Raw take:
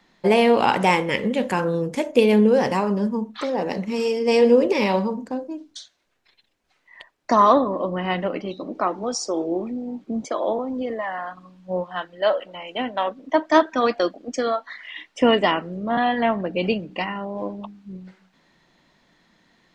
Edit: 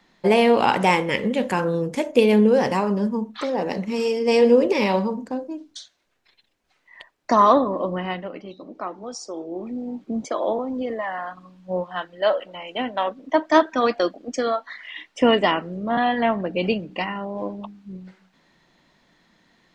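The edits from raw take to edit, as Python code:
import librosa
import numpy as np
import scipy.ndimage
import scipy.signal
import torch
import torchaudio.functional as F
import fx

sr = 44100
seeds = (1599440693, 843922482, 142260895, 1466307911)

y = fx.edit(x, sr, fx.fade_down_up(start_s=7.94, length_s=1.86, db=-8.0, fade_s=0.28), tone=tone)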